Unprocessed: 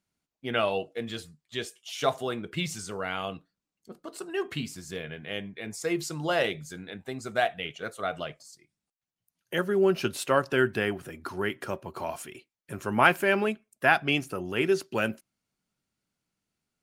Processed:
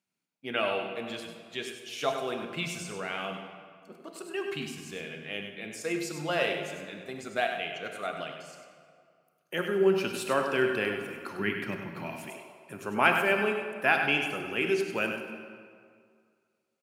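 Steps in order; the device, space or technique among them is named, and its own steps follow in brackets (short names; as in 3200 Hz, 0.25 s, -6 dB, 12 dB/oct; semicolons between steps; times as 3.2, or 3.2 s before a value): PA in a hall (HPF 160 Hz 12 dB/oct; bell 2500 Hz +6.5 dB 0.29 oct; echo 99 ms -8 dB; reverb RT60 2.1 s, pre-delay 27 ms, DRR 6 dB); 11.39–12.3 graphic EQ 125/250/500/1000/2000/8000 Hz +10/+7/-6/-4/+6/-7 dB; gain -4 dB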